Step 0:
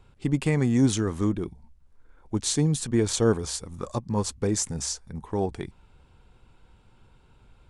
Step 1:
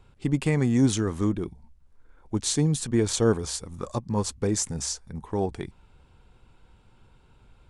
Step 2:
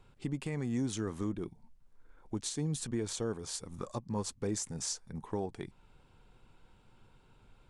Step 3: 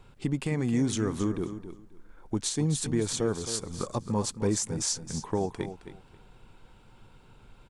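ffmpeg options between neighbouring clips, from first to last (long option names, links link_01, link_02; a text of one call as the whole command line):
ffmpeg -i in.wav -af anull out.wav
ffmpeg -i in.wav -af "equalizer=frequency=64:width=2.8:gain=-15,alimiter=limit=-22dB:level=0:latency=1:release=465,volume=-3.5dB" out.wav
ffmpeg -i in.wav -af "aecho=1:1:267|534|801:0.282|0.0535|0.0102,volume=7dB" out.wav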